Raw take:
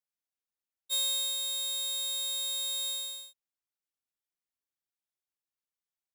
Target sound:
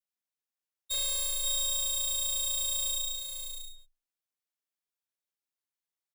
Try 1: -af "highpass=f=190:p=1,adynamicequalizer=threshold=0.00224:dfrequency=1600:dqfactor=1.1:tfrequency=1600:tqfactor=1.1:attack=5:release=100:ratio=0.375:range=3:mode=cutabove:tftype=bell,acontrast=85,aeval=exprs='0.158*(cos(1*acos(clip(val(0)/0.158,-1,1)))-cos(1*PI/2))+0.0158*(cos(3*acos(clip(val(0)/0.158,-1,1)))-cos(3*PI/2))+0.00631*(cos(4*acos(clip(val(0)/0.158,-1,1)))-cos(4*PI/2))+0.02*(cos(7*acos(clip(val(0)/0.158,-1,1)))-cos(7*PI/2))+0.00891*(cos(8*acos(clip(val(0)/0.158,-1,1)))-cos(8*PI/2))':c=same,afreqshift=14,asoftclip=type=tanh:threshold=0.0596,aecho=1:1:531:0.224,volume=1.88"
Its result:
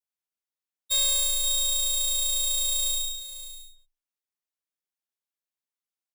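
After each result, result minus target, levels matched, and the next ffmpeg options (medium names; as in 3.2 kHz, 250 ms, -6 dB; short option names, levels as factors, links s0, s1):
saturation: distortion -7 dB; echo-to-direct -6.5 dB
-af "highpass=f=190:p=1,adynamicequalizer=threshold=0.00224:dfrequency=1600:dqfactor=1.1:tfrequency=1600:tqfactor=1.1:attack=5:release=100:ratio=0.375:range=3:mode=cutabove:tftype=bell,acontrast=85,aeval=exprs='0.158*(cos(1*acos(clip(val(0)/0.158,-1,1)))-cos(1*PI/2))+0.0158*(cos(3*acos(clip(val(0)/0.158,-1,1)))-cos(3*PI/2))+0.00631*(cos(4*acos(clip(val(0)/0.158,-1,1)))-cos(4*PI/2))+0.02*(cos(7*acos(clip(val(0)/0.158,-1,1)))-cos(7*PI/2))+0.00891*(cos(8*acos(clip(val(0)/0.158,-1,1)))-cos(8*PI/2))':c=same,afreqshift=14,asoftclip=type=tanh:threshold=0.0188,aecho=1:1:531:0.224,volume=1.88"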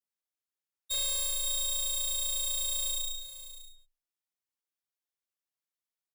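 echo-to-direct -6.5 dB
-af "highpass=f=190:p=1,adynamicequalizer=threshold=0.00224:dfrequency=1600:dqfactor=1.1:tfrequency=1600:tqfactor=1.1:attack=5:release=100:ratio=0.375:range=3:mode=cutabove:tftype=bell,acontrast=85,aeval=exprs='0.158*(cos(1*acos(clip(val(0)/0.158,-1,1)))-cos(1*PI/2))+0.0158*(cos(3*acos(clip(val(0)/0.158,-1,1)))-cos(3*PI/2))+0.00631*(cos(4*acos(clip(val(0)/0.158,-1,1)))-cos(4*PI/2))+0.02*(cos(7*acos(clip(val(0)/0.158,-1,1)))-cos(7*PI/2))+0.00891*(cos(8*acos(clip(val(0)/0.158,-1,1)))-cos(8*PI/2))':c=same,afreqshift=14,asoftclip=type=tanh:threshold=0.0188,aecho=1:1:531:0.473,volume=1.88"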